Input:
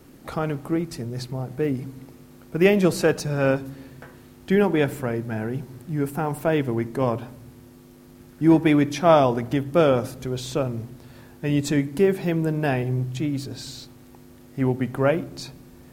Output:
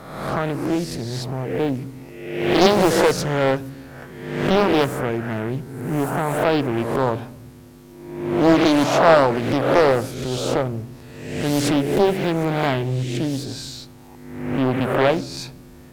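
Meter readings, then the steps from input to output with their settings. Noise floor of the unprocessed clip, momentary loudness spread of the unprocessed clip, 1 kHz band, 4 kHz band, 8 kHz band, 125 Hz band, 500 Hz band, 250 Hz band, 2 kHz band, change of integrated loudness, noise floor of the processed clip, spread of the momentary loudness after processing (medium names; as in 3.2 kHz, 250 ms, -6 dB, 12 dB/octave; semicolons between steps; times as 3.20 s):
-48 dBFS, 16 LU, +6.5 dB, +8.5 dB, +6.0 dB, +1.0 dB, +3.5 dB, +2.0 dB, +5.0 dB, +3.0 dB, -43 dBFS, 17 LU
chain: reverse spectral sustain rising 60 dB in 1.01 s; loudspeaker Doppler distortion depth 0.81 ms; trim +1.5 dB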